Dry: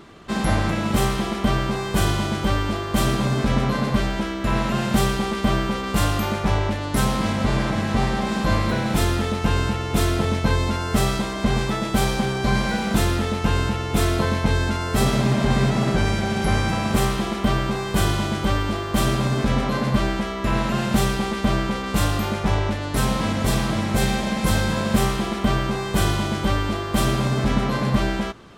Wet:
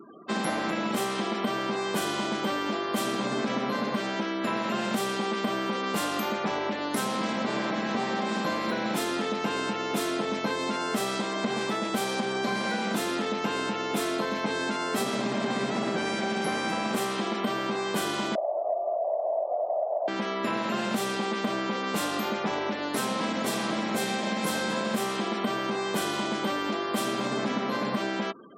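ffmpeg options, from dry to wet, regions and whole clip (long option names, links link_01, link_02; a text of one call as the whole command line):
ffmpeg -i in.wav -filter_complex "[0:a]asettb=1/sr,asplit=3[link_01][link_02][link_03];[link_01]atrim=end=18.354[link_04];[link_02]atrim=start=18.35:end=20.08,asetpts=PTS-STARTPTS,afade=type=in:duration=0.004:curve=qsin,afade=type=out:start_time=1.726:duration=0.004:curve=qsin,aeval=exprs='val(0)+0.0224*(sin(2*PI*60*n/s)+sin(2*PI*2*60*n/s)/2+sin(2*PI*3*60*n/s)/3+sin(2*PI*4*60*n/s)/4+sin(2*PI*5*60*n/s)/5)':channel_layout=same,aeval=exprs='0.447*sin(PI/2*7.94*val(0)/0.447)':channel_layout=same,asuperpass=centerf=640:order=4:qfactor=5.8[link_05];[link_03]atrim=start=20.076[link_06];[link_04][link_05]acrossfade=duration=0.004:curve1=hsin:curve2=qsin[link_07];[link_07][link_06]acrossfade=duration=0.004:curve1=qsin:curve2=hsin,afftfilt=real='re*gte(hypot(re,im),0.01)':imag='im*gte(hypot(re,im),0.01)':win_size=1024:overlap=0.75,highpass=frequency=220:width=0.5412,highpass=frequency=220:width=1.3066,acompressor=threshold=-25dB:ratio=6" out.wav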